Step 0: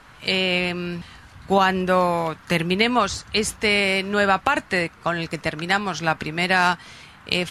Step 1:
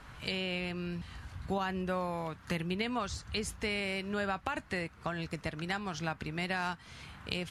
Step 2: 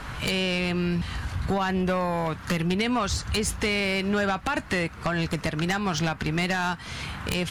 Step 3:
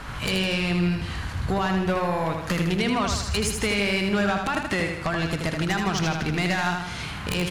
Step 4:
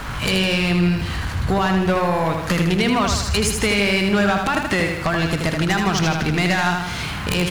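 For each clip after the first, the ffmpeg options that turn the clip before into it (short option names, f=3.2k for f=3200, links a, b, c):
-af "equalizer=f=60:t=o:w=2.8:g=9.5,acompressor=threshold=-34dB:ratio=2,volume=-5.5dB"
-af "acompressor=threshold=-35dB:ratio=3,aeval=exprs='0.0794*sin(PI/2*2.51*val(0)/0.0794)':c=same,volume=3dB"
-af "aecho=1:1:79|158|237|316|395|474|553:0.562|0.298|0.158|0.0837|0.0444|0.0235|0.0125"
-af "aeval=exprs='val(0)+0.5*0.00944*sgn(val(0))':c=same,volume=5dB"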